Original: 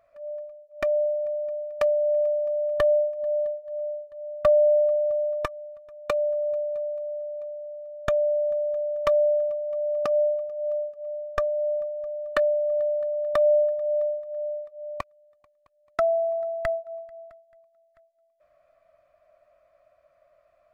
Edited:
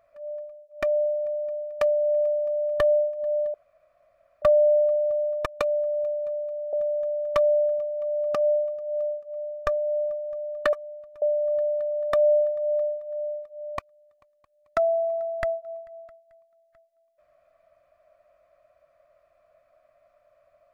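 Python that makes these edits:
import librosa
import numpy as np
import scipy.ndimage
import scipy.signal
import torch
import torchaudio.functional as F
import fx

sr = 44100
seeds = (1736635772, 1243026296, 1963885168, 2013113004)

y = fx.edit(x, sr, fx.room_tone_fill(start_s=3.54, length_s=0.88),
    fx.move(start_s=5.46, length_s=0.49, to_s=12.44),
    fx.cut(start_s=7.22, length_s=1.22), tone=tone)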